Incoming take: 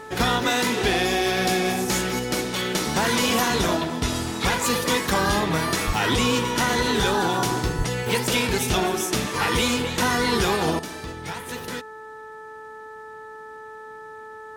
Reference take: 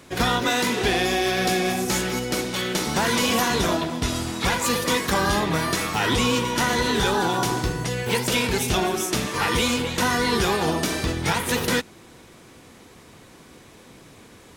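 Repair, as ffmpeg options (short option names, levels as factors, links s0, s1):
-filter_complex "[0:a]bandreject=f=435.7:t=h:w=4,bandreject=f=871.4:t=h:w=4,bandreject=f=1307.1:t=h:w=4,bandreject=f=1742.8:t=h:w=4,asplit=3[s0][s1][s2];[s0]afade=t=out:st=5.86:d=0.02[s3];[s1]highpass=f=140:w=0.5412,highpass=f=140:w=1.3066,afade=t=in:st=5.86:d=0.02,afade=t=out:st=5.98:d=0.02[s4];[s2]afade=t=in:st=5.98:d=0.02[s5];[s3][s4][s5]amix=inputs=3:normalize=0,asplit=3[s6][s7][s8];[s6]afade=t=out:st=7.77:d=0.02[s9];[s7]highpass=f=140:w=0.5412,highpass=f=140:w=1.3066,afade=t=in:st=7.77:d=0.02,afade=t=out:st=7.89:d=0.02[s10];[s8]afade=t=in:st=7.89:d=0.02[s11];[s9][s10][s11]amix=inputs=3:normalize=0,asetnsamples=n=441:p=0,asendcmd='10.79 volume volume 10.5dB',volume=1"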